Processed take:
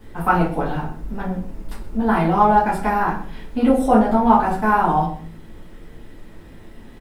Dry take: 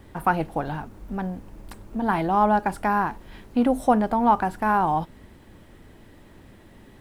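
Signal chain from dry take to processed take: on a send: delay 125 ms -17.5 dB; on the sum: simulated room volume 33 m³, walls mixed, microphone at 1.4 m; trim -4 dB

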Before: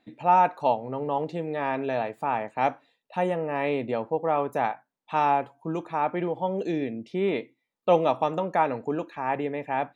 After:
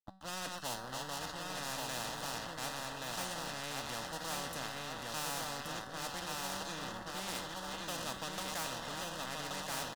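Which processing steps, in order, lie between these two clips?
backward echo that repeats 419 ms, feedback 57%, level -8.5 dB; rotary cabinet horn 0.9 Hz; crossover distortion -42 dBFS; static phaser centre 950 Hz, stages 4; feedback comb 190 Hz, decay 0.51 s, harmonics all, mix 70%; delay 1128 ms -4.5 dB; spectrum-flattening compressor 4:1; trim -1.5 dB

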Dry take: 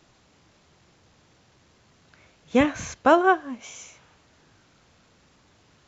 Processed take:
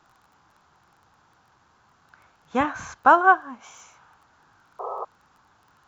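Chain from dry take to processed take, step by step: crackle 14 per s -41 dBFS; high-order bell 1.1 kHz +12.5 dB 1.3 oct; painted sound noise, 4.79–5.05 s, 370–1300 Hz -25 dBFS; trim -6.5 dB

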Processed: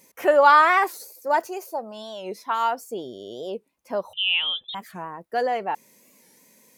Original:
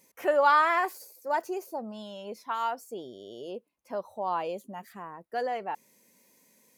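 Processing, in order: 1.47–2.51 s: high-pass 570 Hz -> 200 Hz 12 dB/octave; 4.13–4.75 s: frequency inversion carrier 3.7 kHz; warped record 45 rpm, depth 160 cents; trim +7 dB

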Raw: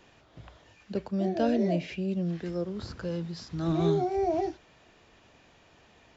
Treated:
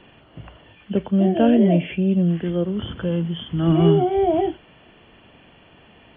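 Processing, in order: knee-point frequency compression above 2.7 kHz 4:1; peaking EQ 200 Hz +5 dB 1.6 oct; trim +7 dB

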